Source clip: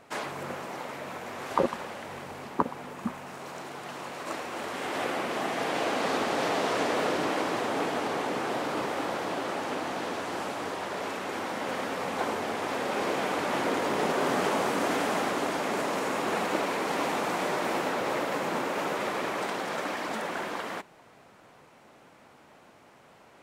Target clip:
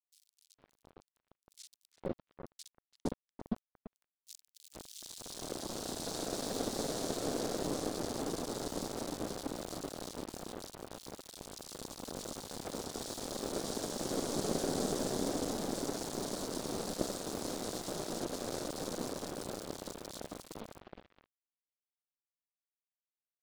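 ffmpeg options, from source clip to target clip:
-filter_complex "[0:a]firequalizer=gain_entry='entry(100,0);entry(570,-7);entry(1100,-16);entry(3800,-2)':delay=0.05:min_phase=1,acrusher=bits=5:mix=0:aa=0.000001,lowpass=f=9800:w=0.5412,lowpass=f=9800:w=1.3066,aeval=exprs='0.708*(cos(1*acos(clip(val(0)/0.708,-1,1)))-cos(1*PI/2))+0.178*(cos(4*acos(clip(val(0)/0.708,-1,1)))-cos(4*PI/2))':c=same,asuperstop=centerf=1700:order=8:qfactor=0.63,asplit=2[s0][s1];[s1]adelay=338,lowpass=f=2000:p=1,volume=0.355,asplit=2[s2][s3];[s3]adelay=338,lowpass=f=2000:p=1,volume=0.37,asplit=2[s4][s5];[s5]adelay=338,lowpass=f=2000:p=1,volume=0.37,asplit=2[s6][s7];[s7]adelay=338,lowpass=f=2000:p=1,volume=0.37[s8];[s2][s4][s6][s8]amix=inputs=4:normalize=0[s9];[s0][s9]amix=inputs=2:normalize=0,aeval=exprs='sgn(val(0))*max(abs(val(0))-0.0141,0)':c=same,dynaudnorm=f=660:g=7:m=3.76,acrossover=split=2900[s10][s11];[s10]adelay=460[s12];[s12][s11]amix=inputs=2:normalize=0,volume=0.376"

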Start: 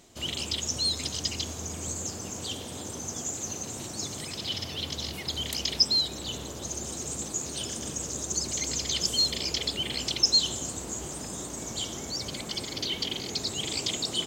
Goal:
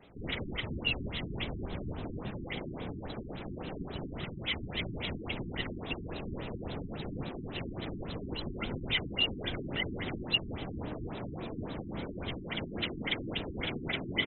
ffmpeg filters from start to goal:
-filter_complex "[0:a]afftfilt=real='hypot(re,im)*cos(2*PI*random(0))':imag='hypot(re,im)*sin(2*PI*random(1))':win_size=512:overlap=0.75,asplit=3[s0][s1][s2];[s1]asetrate=29433,aresample=44100,atempo=1.49831,volume=0.794[s3];[s2]asetrate=88200,aresample=44100,atempo=0.5,volume=0.251[s4];[s0][s3][s4]amix=inputs=3:normalize=0,afftfilt=real='re*lt(b*sr/1024,380*pow(4100/380,0.5+0.5*sin(2*PI*3.6*pts/sr)))':imag='im*lt(b*sr/1024,380*pow(4100/380,0.5+0.5*sin(2*PI*3.6*pts/sr)))':win_size=1024:overlap=0.75,volume=1.78"

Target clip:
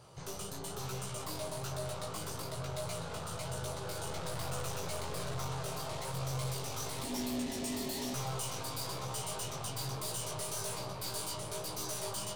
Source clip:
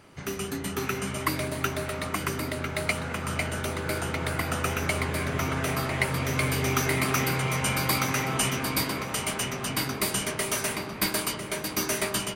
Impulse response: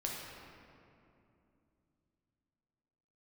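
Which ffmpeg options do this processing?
-filter_complex "[0:a]aeval=exprs='(tanh(63.1*val(0)+0.45)-tanh(0.45))/63.1':c=same,equalizer=f=125:t=o:w=1:g=9,equalizer=f=250:t=o:w=1:g=-12,equalizer=f=500:t=o:w=1:g=6,equalizer=f=1000:t=o:w=1:g=5,equalizer=f=2000:t=o:w=1:g=-11,equalizer=f=4000:t=o:w=1:g=5,equalizer=f=8000:t=o:w=1:g=5,asettb=1/sr,asplit=3[s0][s1][s2];[s0]atrim=end=7.034[s3];[s1]atrim=start=7.03:end=8.14,asetpts=PTS-STARTPTS,afade=t=in:d=0.004:c=qsin,afade=t=out:st=1.106:d=0.004:c=qsin,afreqshift=-380[s4];[s2]atrim=start=8.136[s5];[s3][s4]acrossfade=d=0.004:c1=hsin:c2=qsin[s6];[s6][s5]acrossfade=d=0.004:c1=qsin:c2=hsin,flanger=delay=16:depth=3.5:speed=1.1,asettb=1/sr,asplit=3[s7][s8][s9];[s7]atrim=end=4.064[s10];[s8]atrim=start=4.06:end=5.47,asetpts=PTS-STARTPTS,afade=t=in:d=0.004:c=qsin,afade=t=out:st=1.406:d=0.004:c=qsin,aeval=exprs='0.0422*(cos(1*acos(clip(val(0)/0.0422,-1,1)))-cos(1*PI/2))+0.00335*(cos(8*acos(clip(val(0)/0.0422,-1,1)))-cos(8*PI/2))':c=same[s11];[s9]atrim=start=5.466[s12];[s10][s11]acrossfade=d=0.004:c1=hsin:c2=qsin[s13];[s13][s12]acrossfade=d=0.004:c1=qsin:c2=hsin"

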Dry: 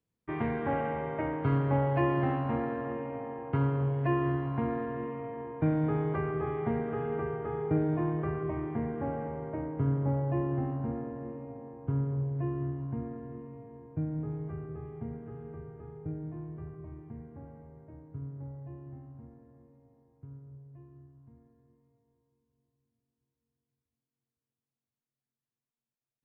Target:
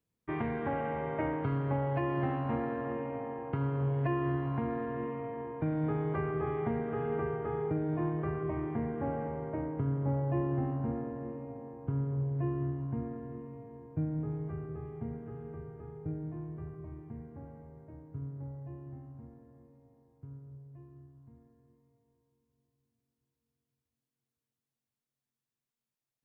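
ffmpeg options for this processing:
-af "alimiter=limit=0.075:level=0:latency=1:release=447"

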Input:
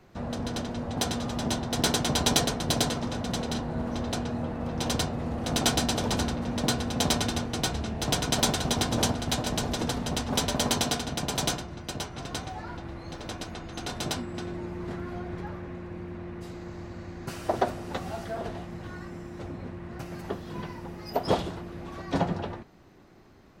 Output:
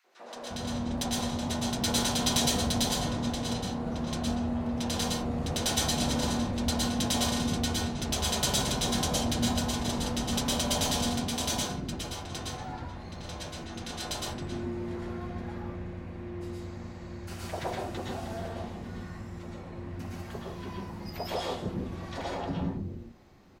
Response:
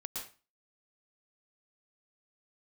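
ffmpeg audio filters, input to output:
-filter_complex "[0:a]acrossover=split=350|3500[s0][s1][s2];[s1]volume=17.8,asoftclip=hard,volume=0.0562[s3];[s0][s3][s2]amix=inputs=3:normalize=0,acrossover=split=370|1300[s4][s5][s6];[s5]adelay=40[s7];[s4]adelay=350[s8];[s8][s7][s6]amix=inputs=3:normalize=0[s9];[1:a]atrim=start_sample=2205,afade=t=out:st=0.26:d=0.01,atrim=end_sample=11907[s10];[s9][s10]afir=irnorm=-1:irlink=0"

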